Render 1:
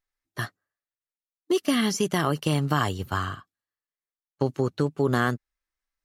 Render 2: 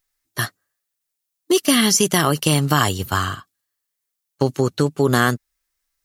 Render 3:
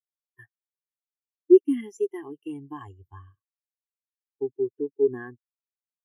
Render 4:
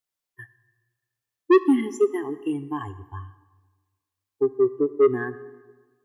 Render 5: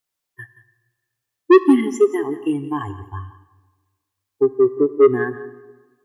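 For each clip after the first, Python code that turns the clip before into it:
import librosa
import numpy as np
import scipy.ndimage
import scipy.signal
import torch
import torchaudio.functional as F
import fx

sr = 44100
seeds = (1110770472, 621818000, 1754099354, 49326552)

y1 = fx.high_shelf(x, sr, hz=4100.0, db=12.0)
y1 = y1 * 10.0 ** (6.0 / 20.0)
y2 = fx.fixed_phaser(y1, sr, hz=890.0, stages=8)
y2 = fx.spectral_expand(y2, sr, expansion=2.5)
y3 = 10.0 ** (-19.5 / 20.0) * np.tanh(y2 / 10.0 ** (-19.5 / 20.0))
y3 = fx.rev_plate(y3, sr, seeds[0], rt60_s=1.4, hf_ratio=0.7, predelay_ms=0, drr_db=13.5)
y3 = y3 * 10.0 ** (8.5 / 20.0)
y4 = y3 + 10.0 ** (-15.5 / 20.0) * np.pad(y3, (int(175 * sr / 1000.0), 0))[:len(y3)]
y4 = y4 * 10.0 ** (5.5 / 20.0)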